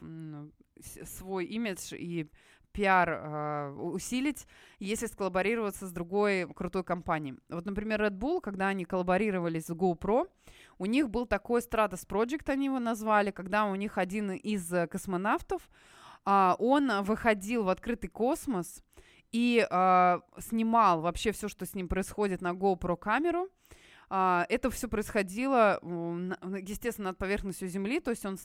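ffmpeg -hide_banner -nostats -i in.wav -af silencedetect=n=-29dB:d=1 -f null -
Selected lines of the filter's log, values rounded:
silence_start: 0.00
silence_end: 1.31 | silence_duration: 1.31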